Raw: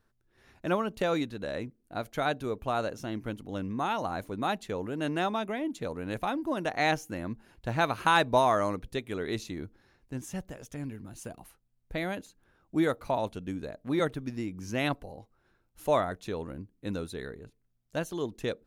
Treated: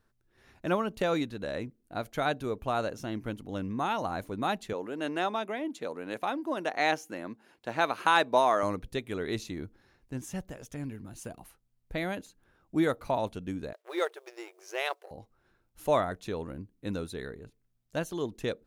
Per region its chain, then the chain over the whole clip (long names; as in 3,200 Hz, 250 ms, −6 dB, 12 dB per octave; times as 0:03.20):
0:04.73–0:08.63: high-pass filter 280 Hz + high-shelf EQ 10,000 Hz −5.5 dB
0:13.73–0:15.11: mu-law and A-law mismatch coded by A + linear-phase brick-wall high-pass 340 Hz
whole clip: no processing